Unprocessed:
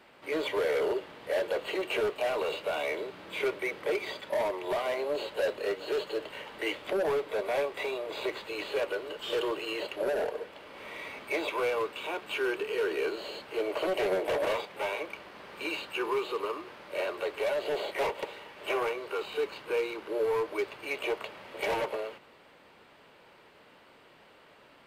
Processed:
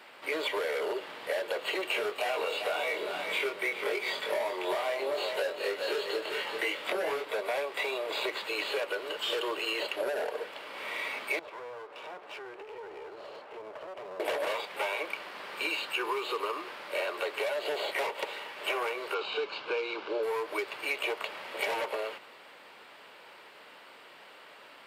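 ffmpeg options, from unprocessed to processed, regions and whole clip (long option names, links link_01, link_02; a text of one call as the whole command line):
ffmpeg -i in.wav -filter_complex "[0:a]asettb=1/sr,asplit=3[link_01][link_02][link_03];[link_01]atrim=end=1.924[link_04];[link_02]atrim=start=1.92:end=7.25,asetpts=PTS-STARTPTS,afade=type=in:duration=0.004:curve=qsin,afade=type=out:start_time=5.326:duration=0.004:curve=qsin,asplit=2[link_05][link_06];[link_06]adelay=22,volume=-2.5dB[link_07];[link_05][link_07]amix=inputs=2:normalize=0,atrim=end_sample=235053,aecho=1:1:394:0.299,atrim=end_sample=235053[link_08];[link_03]atrim=start=7.246[link_09];[link_04][link_08]acrossfade=duration=0.004:curve1=hsin:curve2=qsin[link_10];[link_10][link_09]acrossfade=duration=0.004:curve1=qsin:curve2=hsin,asettb=1/sr,asplit=3[link_11][link_12][link_13];[link_11]atrim=end=11.394[link_14];[link_12]atrim=start=11.39:end=14.2,asetpts=PTS-STARTPTS,afade=type=in:duration=0.004:curve=qsin,afade=type=out:start_time=2.806:duration=0.004:curve=qsin,bandpass=frequency=600:width_type=q:width=1.1,acompressor=threshold=-42dB:ratio=4:attack=3.2:release=140:knee=1:detection=peak,aeval=exprs='clip(val(0),-1,0.00316)':channel_layout=same[link_15];[link_13]atrim=start=14.196[link_16];[link_14][link_15]acrossfade=duration=0.004:curve1=hsin:curve2=qsin[link_17];[link_17][link_16]acrossfade=duration=0.004:curve1=qsin:curve2=hsin,asettb=1/sr,asplit=3[link_18][link_19][link_20];[link_18]atrim=end=19.144[link_21];[link_19]atrim=start=19.14:end=20.23,asetpts=PTS-STARTPTS,afade=type=in:duration=0.004:curve=qsin,afade=type=out:start_time=1.086:duration=0.004:curve=qsin,lowpass=frequency=5600:width=0.5412,lowpass=frequency=5600:width=1.3066,bandreject=frequency=1900:width=5.4[link_22];[link_20]atrim=start=20.226[link_23];[link_21][link_22]acrossfade=duration=0.004:curve1=hsin:curve2=qsin[link_24];[link_24][link_23]acrossfade=duration=0.004:curve1=qsin:curve2=hsin,highpass=frequency=760:poles=1,bandreject=frequency=6200:width=19,acompressor=threshold=-36dB:ratio=6,volume=7.5dB" out.wav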